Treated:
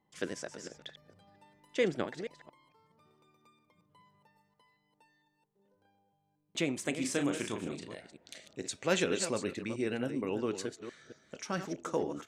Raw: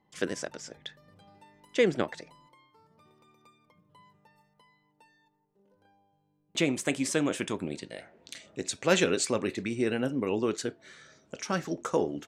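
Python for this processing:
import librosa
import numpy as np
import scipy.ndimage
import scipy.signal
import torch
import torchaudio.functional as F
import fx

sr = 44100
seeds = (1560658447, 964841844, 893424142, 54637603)

y = fx.reverse_delay(x, sr, ms=227, wet_db=-10.0)
y = fx.doubler(y, sr, ms=35.0, db=-6.0, at=(6.99, 7.95))
y = F.gain(torch.from_numpy(y), -5.5).numpy()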